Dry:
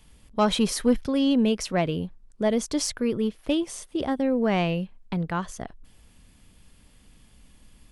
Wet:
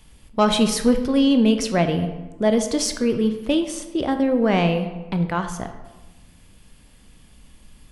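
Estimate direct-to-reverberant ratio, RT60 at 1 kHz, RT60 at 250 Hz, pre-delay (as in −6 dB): 6.5 dB, 1.2 s, 1.2 s, 14 ms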